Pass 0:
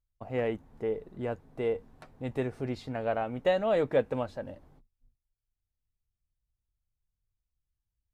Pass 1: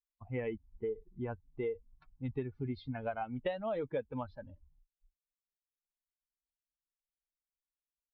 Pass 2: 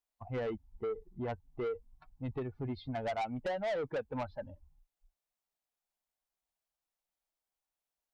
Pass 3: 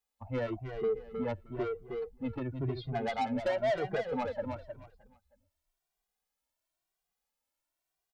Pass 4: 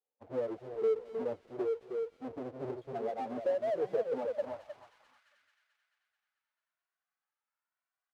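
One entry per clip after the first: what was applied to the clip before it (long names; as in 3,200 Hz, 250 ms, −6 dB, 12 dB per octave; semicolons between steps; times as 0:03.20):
spectral dynamics exaggerated over time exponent 2; Butterworth low-pass 4,100 Hz 48 dB per octave; downward compressor 6 to 1, threshold −38 dBFS, peak gain reduction 15 dB; level +4.5 dB
parametric band 730 Hz +10 dB 0.97 octaves; soft clipping −33.5 dBFS, distortion −8 dB; level +2 dB
repeating echo 312 ms, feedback 24%, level −7 dB; barber-pole flanger 2 ms +0.97 Hz; level +6 dB
each half-wave held at its own peak; delay with a high-pass on its return 219 ms, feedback 62%, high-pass 2,700 Hz, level −8 dB; band-pass filter sweep 470 Hz → 1,400 Hz, 0:04.16–0:05.34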